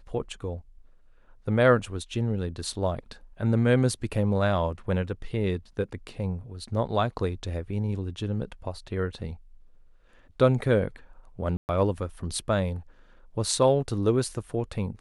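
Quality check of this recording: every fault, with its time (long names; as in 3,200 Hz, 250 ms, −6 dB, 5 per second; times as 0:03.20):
0:11.57–0:11.69: drop-out 119 ms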